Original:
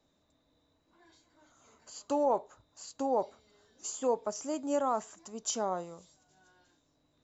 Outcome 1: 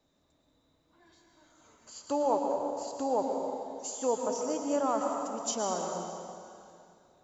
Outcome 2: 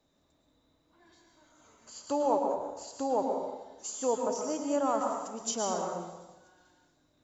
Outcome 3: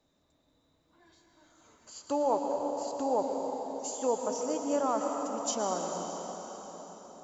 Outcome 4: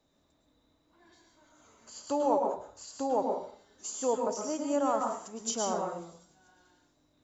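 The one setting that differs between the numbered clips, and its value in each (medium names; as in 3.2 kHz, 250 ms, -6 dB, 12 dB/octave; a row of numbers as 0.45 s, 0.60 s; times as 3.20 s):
plate-style reverb, RT60: 2.5 s, 1.1 s, 5.2 s, 0.51 s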